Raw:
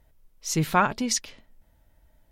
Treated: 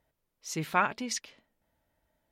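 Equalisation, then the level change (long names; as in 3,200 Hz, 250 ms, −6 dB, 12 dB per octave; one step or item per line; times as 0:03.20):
high-pass filter 240 Hz 6 dB per octave
high-shelf EQ 4,200 Hz −4.5 dB
dynamic equaliser 2,300 Hz, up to +7 dB, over −40 dBFS, Q 1.3
−6.0 dB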